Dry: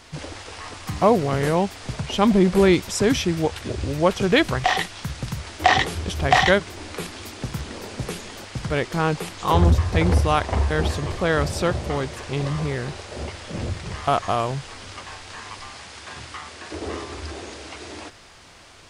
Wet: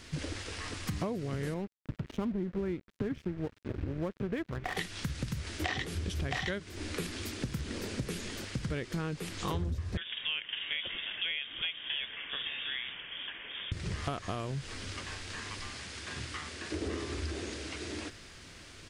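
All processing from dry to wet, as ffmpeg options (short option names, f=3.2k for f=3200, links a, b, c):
-filter_complex "[0:a]asettb=1/sr,asplit=3[a][b][c];[a]atrim=end=1.544[d];[b]atrim=start=1.54:end=4.77,asetpts=PTS-STARTPTS,afade=t=in:d=0.004:c=qsin,afade=t=out:st=3.226:d=0.004:c=qsin,lowpass=1.6k,aeval=exprs='sgn(val(0))*max(abs(val(0))-0.0282,0)':c=same[e];[c]atrim=start=4.766[f];[d][e]acrossfade=d=0.004:c1=hsin:c2=qsin[g];[g][f]acrossfade=d=0.004:c1=qsin:c2=hsin,asettb=1/sr,asplit=3[h][i][j];[h]atrim=end=9.974[k];[i]atrim=start=9.97:end=13.72,asetpts=PTS-STARTPTS,afade=t=in:d=0.004:c=qsin,afade=t=out:st=3.746:d=0.004:c=qsin,highpass=550,lowpass=f=3.2k:t=q:w=0.5098,lowpass=f=3.2k:t=q:w=0.6013,lowpass=f=3.2k:t=q:w=0.9,lowpass=f=3.2k:t=q:w=2.563,afreqshift=-3800,bandreject=f=1.3k:w=15[l];[j]atrim=start=13.716[m];[k][l]acrossfade=d=0.004:c1=hsin:c2=qsin[n];[n][m]acrossfade=d=0.004:c1=qsin:c2=hsin,firequalizer=gain_entry='entry(300,0);entry(790,-12);entry(1600,-3)':delay=0.05:min_phase=1,acompressor=threshold=-31dB:ratio=10"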